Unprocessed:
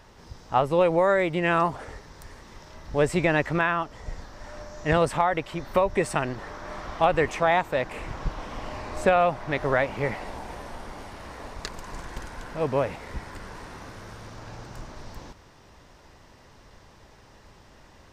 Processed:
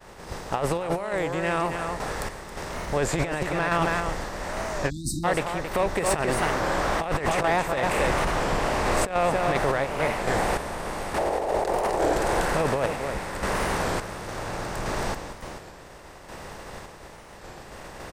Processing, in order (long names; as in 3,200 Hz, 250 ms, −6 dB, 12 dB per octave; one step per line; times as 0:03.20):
compressor on every frequency bin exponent 0.6
0:11.18–0:12.14: flat-topped bell 530 Hz +12.5 dB
downward expander −29 dBFS
high-shelf EQ 8,100 Hz +11.5 dB
on a send: single-tap delay 272 ms −7 dB
on the sum: sample-and-hold tremolo, depth 70%
compressor whose output falls as the input rises −23 dBFS, ratio −0.5
soft clipping −15 dBFS, distortion −20 dB
0:04.91–0:05.24: time-frequency box erased 350–3,700 Hz
wow of a warped record 33 1/3 rpm, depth 160 cents
level +1.5 dB